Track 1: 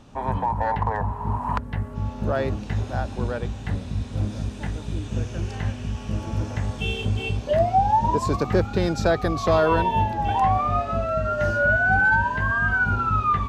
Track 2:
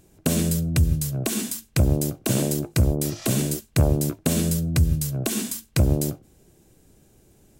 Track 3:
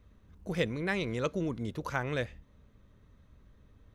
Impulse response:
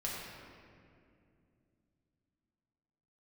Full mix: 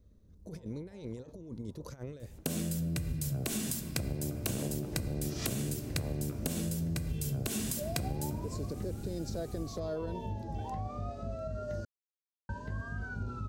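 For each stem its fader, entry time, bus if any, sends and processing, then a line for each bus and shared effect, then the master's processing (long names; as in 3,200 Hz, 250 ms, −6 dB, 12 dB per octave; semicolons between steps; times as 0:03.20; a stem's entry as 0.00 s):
−9.5 dB, 0.30 s, muted 0:11.85–0:12.49, bus A, no send, automatic ducking −22 dB, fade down 0.30 s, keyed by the third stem
−4.0 dB, 2.20 s, no bus, send −9 dB, automatic gain control gain up to 8.5 dB; hum removal 59.65 Hz, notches 29; downward compressor, threshold −23 dBFS, peak gain reduction 14.5 dB
−5.5 dB, 0.00 s, bus A, no send, compressor whose output falls as the input rises −36 dBFS, ratio −0.5
bus A: 0.0 dB, flat-topped bell 1,600 Hz −13 dB 2.4 octaves; brickwall limiter −28 dBFS, peak gain reduction 9 dB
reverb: on, RT60 2.5 s, pre-delay 4 ms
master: downward compressor 6 to 1, threshold −31 dBFS, peak gain reduction 9.5 dB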